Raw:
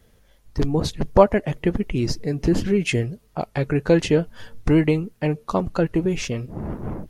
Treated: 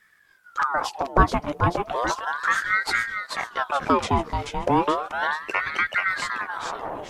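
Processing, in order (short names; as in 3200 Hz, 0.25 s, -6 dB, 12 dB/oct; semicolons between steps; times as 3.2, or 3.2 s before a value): 0.97–1.41 median filter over 5 samples; thinning echo 0.433 s, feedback 49%, high-pass 390 Hz, level -4 dB; ring modulator with a swept carrier 1100 Hz, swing 60%, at 0.34 Hz; gain -1 dB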